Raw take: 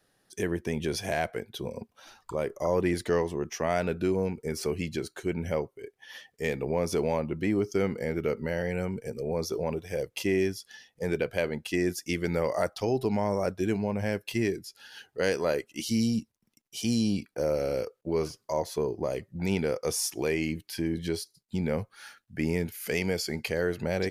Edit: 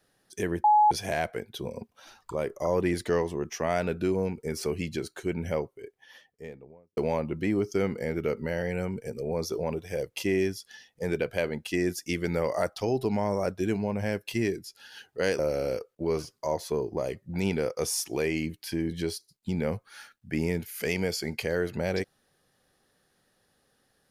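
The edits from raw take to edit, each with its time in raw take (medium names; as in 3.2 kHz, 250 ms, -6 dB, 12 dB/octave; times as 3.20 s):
0.64–0.91 s: bleep 844 Hz -16 dBFS
5.57–6.97 s: studio fade out
15.39–17.45 s: delete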